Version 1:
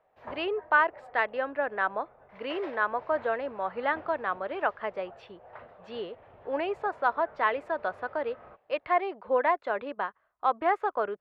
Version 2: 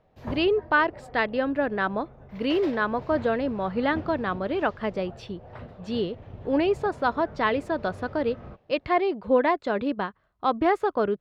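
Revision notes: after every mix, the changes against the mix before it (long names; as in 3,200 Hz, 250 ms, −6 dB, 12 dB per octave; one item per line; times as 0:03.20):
master: remove three-way crossover with the lows and the highs turned down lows −20 dB, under 500 Hz, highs −18 dB, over 2,600 Hz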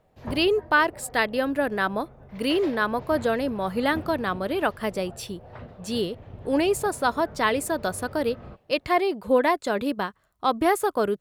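speech: remove high-frequency loss of the air 230 metres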